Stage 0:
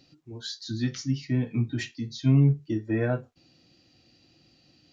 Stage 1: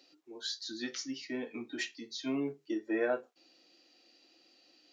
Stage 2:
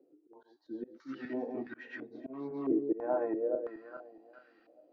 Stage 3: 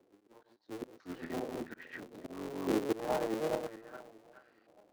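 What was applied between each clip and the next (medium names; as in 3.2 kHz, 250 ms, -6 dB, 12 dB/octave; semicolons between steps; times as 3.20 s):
high-pass 330 Hz 24 dB/octave; trim -1.5 dB
backward echo that repeats 209 ms, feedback 53%, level -4 dB; slow attack 314 ms; step-sequenced low-pass 3 Hz 430–1500 Hz; trim -1.5 dB
cycle switcher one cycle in 3, muted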